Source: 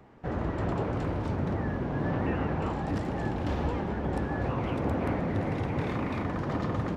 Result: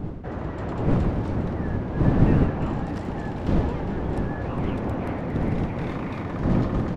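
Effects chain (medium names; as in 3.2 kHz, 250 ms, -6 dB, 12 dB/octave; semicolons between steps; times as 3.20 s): wind noise 220 Hz -26 dBFS; delay 407 ms -11 dB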